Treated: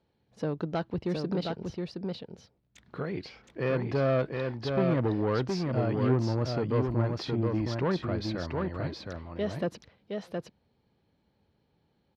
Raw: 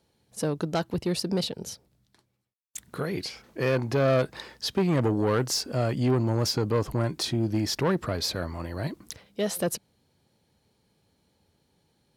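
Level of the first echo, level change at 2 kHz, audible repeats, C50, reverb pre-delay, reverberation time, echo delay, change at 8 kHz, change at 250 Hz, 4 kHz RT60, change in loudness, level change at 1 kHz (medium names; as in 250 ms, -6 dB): -4.0 dB, -3.5 dB, 1, no reverb, no reverb, no reverb, 717 ms, under -15 dB, -2.0 dB, no reverb, -3.0 dB, -2.5 dB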